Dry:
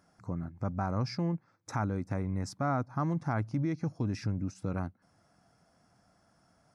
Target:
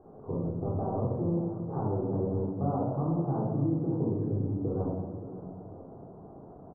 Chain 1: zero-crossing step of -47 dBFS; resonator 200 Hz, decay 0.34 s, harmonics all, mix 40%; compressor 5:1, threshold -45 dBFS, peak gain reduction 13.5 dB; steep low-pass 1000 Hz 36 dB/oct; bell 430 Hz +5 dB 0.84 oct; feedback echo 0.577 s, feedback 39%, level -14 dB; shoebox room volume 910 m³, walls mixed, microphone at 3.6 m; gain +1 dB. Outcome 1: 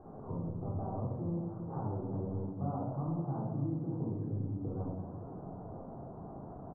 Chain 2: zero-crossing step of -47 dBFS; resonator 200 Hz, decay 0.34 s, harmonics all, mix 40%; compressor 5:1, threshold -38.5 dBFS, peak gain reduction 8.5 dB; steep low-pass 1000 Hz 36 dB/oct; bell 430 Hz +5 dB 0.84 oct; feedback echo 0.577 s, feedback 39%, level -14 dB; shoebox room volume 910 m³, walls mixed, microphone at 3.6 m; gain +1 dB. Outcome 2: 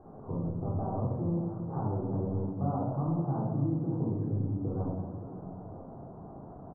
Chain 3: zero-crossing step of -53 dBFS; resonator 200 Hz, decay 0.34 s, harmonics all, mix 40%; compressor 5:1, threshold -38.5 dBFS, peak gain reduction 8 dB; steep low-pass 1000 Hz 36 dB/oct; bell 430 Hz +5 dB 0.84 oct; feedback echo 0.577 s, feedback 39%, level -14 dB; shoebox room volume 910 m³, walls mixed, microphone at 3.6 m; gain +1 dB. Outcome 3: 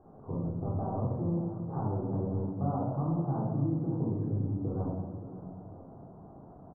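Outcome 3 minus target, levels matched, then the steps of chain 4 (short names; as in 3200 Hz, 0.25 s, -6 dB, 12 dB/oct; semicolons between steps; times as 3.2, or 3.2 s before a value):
500 Hz band -3.0 dB
zero-crossing step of -53 dBFS; resonator 200 Hz, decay 0.34 s, harmonics all, mix 40%; compressor 5:1, threshold -38.5 dBFS, peak gain reduction 8 dB; steep low-pass 1000 Hz 36 dB/oct; bell 430 Hz +12 dB 0.84 oct; feedback echo 0.577 s, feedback 39%, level -14 dB; shoebox room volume 910 m³, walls mixed, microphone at 3.6 m; gain +1 dB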